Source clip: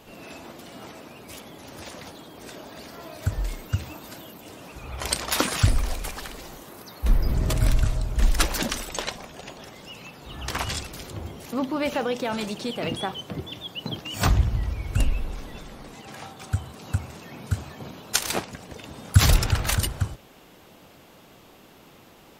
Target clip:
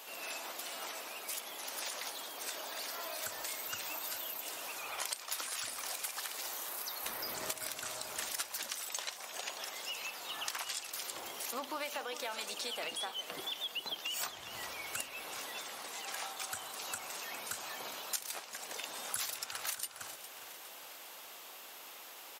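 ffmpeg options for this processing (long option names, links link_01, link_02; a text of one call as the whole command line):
ffmpeg -i in.wav -af "highpass=740,highshelf=frequency=5600:gain=9.5,acompressor=threshold=-37dB:ratio=12,aecho=1:1:409|818|1227|1636|2045|2454:0.224|0.121|0.0653|0.0353|0.019|0.0103,volume=1dB" out.wav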